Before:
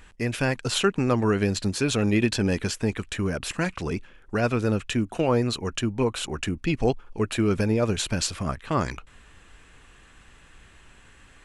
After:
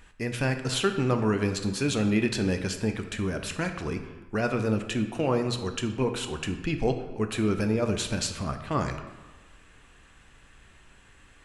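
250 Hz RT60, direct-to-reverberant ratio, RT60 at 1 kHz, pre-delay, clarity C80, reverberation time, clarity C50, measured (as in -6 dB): 1.2 s, 6.5 dB, 1.3 s, 10 ms, 10.5 dB, 1.3 s, 8.5 dB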